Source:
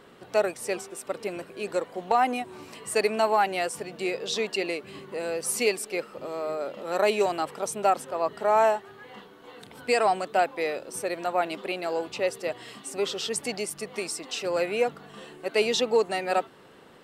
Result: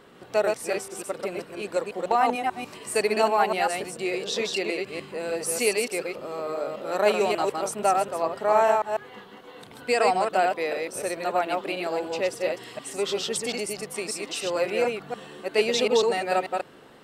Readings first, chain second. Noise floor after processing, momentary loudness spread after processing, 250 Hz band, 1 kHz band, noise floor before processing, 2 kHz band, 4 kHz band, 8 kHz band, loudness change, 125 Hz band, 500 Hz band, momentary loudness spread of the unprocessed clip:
−48 dBFS, 11 LU, +1.5 dB, +1.5 dB, −51 dBFS, +1.5 dB, +1.5 dB, +1.5 dB, +1.5 dB, +2.0 dB, +1.5 dB, 13 LU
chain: delay that plays each chunk backwards 147 ms, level −3 dB

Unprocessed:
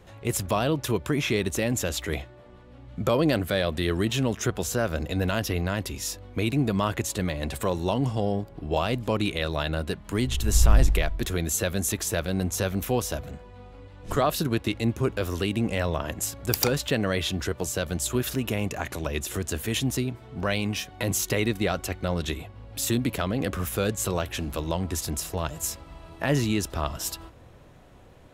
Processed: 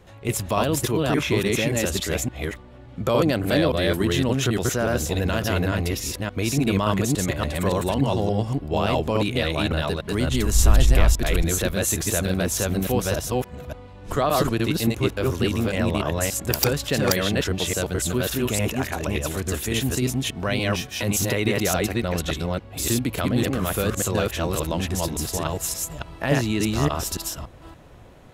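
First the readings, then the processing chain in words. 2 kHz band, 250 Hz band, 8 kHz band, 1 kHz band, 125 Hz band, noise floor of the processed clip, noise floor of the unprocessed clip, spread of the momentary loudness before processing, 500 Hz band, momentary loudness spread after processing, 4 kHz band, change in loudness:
+4.0 dB, +4.0 dB, +4.0 dB, +4.0 dB, +4.0 dB, −43 dBFS, −49 dBFS, 7 LU, +4.0 dB, 6 LU, +4.0 dB, +4.0 dB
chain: delay that plays each chunk backwards 286 ms, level 0 dB
level +1 dB

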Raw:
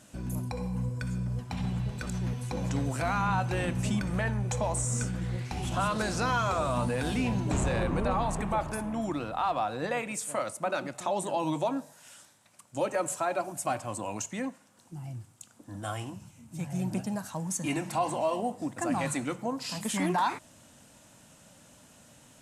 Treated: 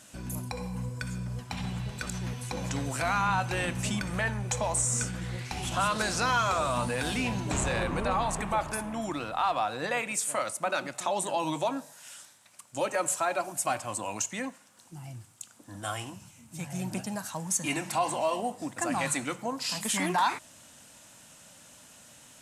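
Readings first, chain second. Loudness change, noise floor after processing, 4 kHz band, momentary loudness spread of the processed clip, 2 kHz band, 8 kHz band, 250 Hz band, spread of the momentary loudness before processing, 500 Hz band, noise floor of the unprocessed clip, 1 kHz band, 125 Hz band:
+1.0 dB, −56 dBFS, +5.0 dB, 12 LU, +4.0 dB, +5.5 dB, −3.0 dB, 9 LU, −0.5 dB, −58 dBFS, +1.5 dB, −3.5 dB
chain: tilt shelving filter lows −4.5 dB, about 820 Hz
level +1 dB

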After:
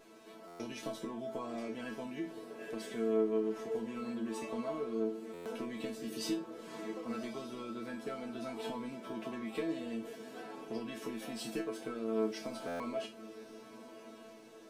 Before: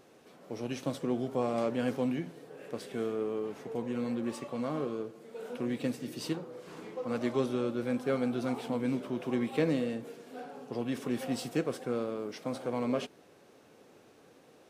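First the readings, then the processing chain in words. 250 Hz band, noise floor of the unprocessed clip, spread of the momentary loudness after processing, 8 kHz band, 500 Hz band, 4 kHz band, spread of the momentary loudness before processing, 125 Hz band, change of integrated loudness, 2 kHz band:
−6.0 dB, −59 dBFS, 14 LU, −1.5 dB, −4.5 dB, −2.0 dB, 12 LU, −12.5 dB, −5.5 dB, −4.0 dB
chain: downward compressor, threshold −36 dBFS, peak gain reduction 12 dB
resonators tuned to a chord A3 fifth, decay 0.26 s
feedback delay with all-pass diffusion 1,124 ms, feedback 42%, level −15 dB
buffer that repeats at 0:00.47/0:05.33/0:12.67, samples 512, times 10
level +17.5 dB

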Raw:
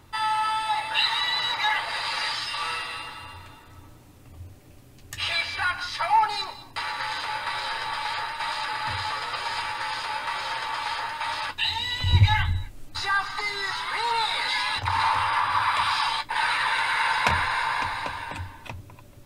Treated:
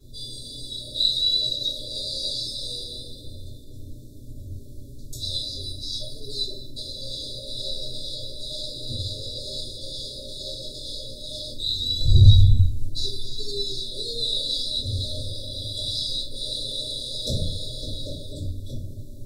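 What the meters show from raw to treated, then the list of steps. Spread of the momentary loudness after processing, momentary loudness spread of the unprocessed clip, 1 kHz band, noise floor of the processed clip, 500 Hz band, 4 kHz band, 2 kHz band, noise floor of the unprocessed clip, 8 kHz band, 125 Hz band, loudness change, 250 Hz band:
19 LU, 10 LU, below −40 dB, −39 dBFS, +2.5 dB, +3.0 dB, below −40 dB, −50 dBFS, +2.5 dB, +7.5 dB, −0.5 dB, +6.0 dB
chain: linear-phase brick-wall band-stop 640–3,400 Hz
rectangular room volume 48 cubic metres, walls mixed, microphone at 3.2 metres
level −10 dB

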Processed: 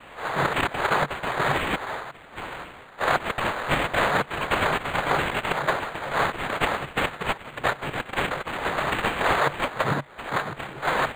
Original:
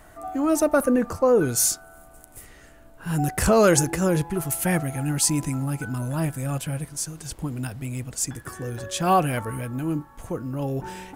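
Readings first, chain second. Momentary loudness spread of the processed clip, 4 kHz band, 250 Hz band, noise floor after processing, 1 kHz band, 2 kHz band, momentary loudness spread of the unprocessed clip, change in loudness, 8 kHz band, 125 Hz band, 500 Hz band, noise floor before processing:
7 LU, +4.5 dB, −9.0 dB, −45 dBFS, +4.5 dB, +9.5 dB, 13 LU, −1.5 dB, −17.0 dB, −7.5 dB, −4.0 dB, −50 dBFS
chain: sine wavefolder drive 14 dB, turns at −4 dBFS
auto-filter high-pass saw down 1.9 Hz 900–3,300 Hz
cochlear-implant simulation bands 3
parametric band 140 Hz +13 dB 0.44 octaves
compressor whose output falls as the input rises −16 dBFS, ratio −1
pitch vibrato 6.9 Hz 14 cents
linearly interpolated sample-rate reduction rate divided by 8×
level −5.5 dB

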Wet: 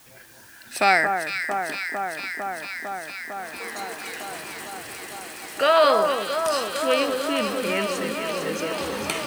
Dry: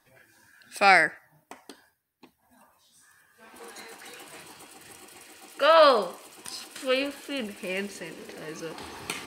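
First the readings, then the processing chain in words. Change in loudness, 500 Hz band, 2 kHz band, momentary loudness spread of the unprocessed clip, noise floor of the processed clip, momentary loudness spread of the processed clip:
−1.0 dB, +3.5 dB, +3.0 dB, 22 LU, −48 dBFS, 16 LU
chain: downward compressor 1.5 to 1, threshold −35 dBFS, peak gain reduction 8 dB
bit-depth reduction 10 bits, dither triangular
on a send: delay that swaps between a low-pass and a high-pass 226 ms, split 1,600 Hz, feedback 90%, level −5.5 dB
on the sum: level +7.5 dB

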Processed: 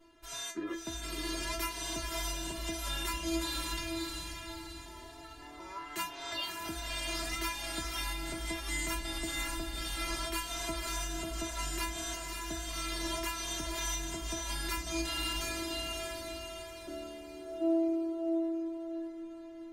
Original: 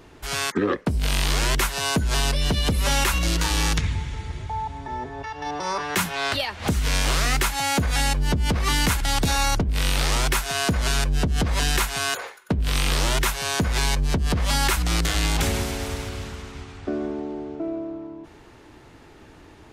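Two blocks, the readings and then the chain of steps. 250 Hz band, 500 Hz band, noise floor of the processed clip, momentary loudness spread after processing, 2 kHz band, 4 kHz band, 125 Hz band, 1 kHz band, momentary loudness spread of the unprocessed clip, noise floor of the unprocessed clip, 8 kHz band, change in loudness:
−8.0 dB, −9.5 dB, −48 dBFS, 10 LU, −12.5 dB, −11.5 dB, −20.5 dB, −13.5 dB, 11 LU, −48 dBFS, −10.0 dB, −12.5 dB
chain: stiff-string resonator 330 Hz, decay 0.31 s, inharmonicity 0.002
feedback delay with all-pass diffusion 583 ms, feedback 40%, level −3 dB
level +2 dB

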